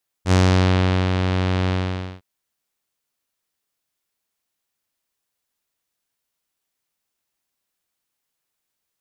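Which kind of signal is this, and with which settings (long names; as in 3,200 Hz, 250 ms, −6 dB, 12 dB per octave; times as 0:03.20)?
subtractive voice saw F#2 12 dB per octave, low-pass 3,800 Hz, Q 1.3, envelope 1 octave, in 0.50 s, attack 68 ms, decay 0.78 s, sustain −6 dB, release 0.52 s, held 1.44 s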